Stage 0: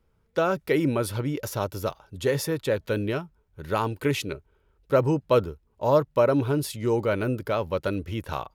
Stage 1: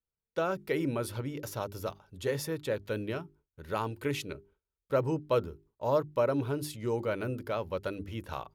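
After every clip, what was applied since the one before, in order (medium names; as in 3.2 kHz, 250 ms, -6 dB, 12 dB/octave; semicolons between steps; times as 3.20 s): hum notches 50/100/150/200/250/300/350/400 Hz; gate with hold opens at -48 dBFS; trim -7 dB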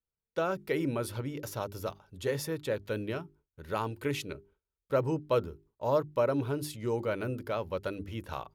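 no audible change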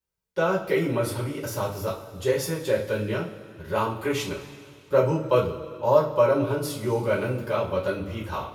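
two-slope reverb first 0.29 s, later 2.4 s, from -18 dB, DRR -7 dB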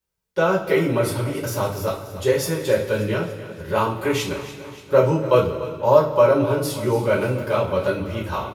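feedback delay 290 ms, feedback 55%, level -15 dB; trim +4.5 dB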